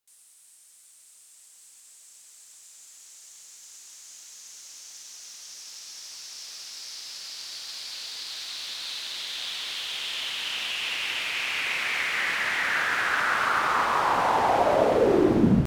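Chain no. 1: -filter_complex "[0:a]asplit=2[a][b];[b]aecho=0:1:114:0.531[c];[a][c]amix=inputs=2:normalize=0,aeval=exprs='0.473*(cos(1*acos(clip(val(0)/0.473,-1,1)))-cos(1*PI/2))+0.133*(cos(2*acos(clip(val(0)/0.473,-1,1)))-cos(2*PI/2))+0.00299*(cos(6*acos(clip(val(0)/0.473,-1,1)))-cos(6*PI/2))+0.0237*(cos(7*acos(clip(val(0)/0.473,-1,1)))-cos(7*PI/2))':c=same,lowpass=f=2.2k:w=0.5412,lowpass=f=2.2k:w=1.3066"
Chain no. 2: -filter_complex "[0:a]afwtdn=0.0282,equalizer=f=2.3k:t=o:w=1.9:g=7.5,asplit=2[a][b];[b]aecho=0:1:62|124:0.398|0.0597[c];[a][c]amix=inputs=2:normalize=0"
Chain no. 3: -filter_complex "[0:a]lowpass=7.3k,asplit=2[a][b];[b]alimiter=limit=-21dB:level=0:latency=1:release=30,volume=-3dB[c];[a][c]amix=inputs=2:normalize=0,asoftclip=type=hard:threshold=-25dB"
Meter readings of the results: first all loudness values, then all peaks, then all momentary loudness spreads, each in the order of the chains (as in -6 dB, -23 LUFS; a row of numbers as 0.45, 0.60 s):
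-25.0, -19.5, -27.5 LUFS; -4.0, -6.0, -25.0 dBFS; 21, 7, 18 LU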